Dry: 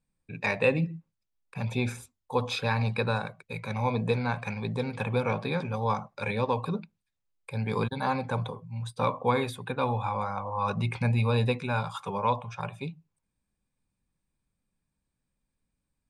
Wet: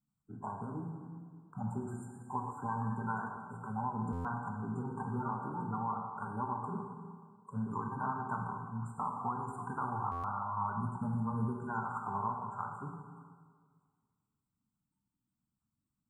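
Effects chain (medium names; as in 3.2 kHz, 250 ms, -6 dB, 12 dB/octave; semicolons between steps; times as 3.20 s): coarse spectral quantiser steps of 30 dB; high-pass 230 Hz 6 dB/octave; treble shelf 8.6 kHz -6 dB; static phaser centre 2.6 kHz, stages 8; compression 6:1, threshold -34 dBFS, peak gain reduction 11 dB; brick-wall FIR band-stop 1.6–7.1 kHz; plate-style reverb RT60 1.8 s, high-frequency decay 0.9×, DRR 1 dB; buffer glitch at 4.12/10.11 s, samples 512, times 10; 0.90–3.37 s: modulated delay 109 ms, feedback 69%, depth 147 cents, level -16.5 dB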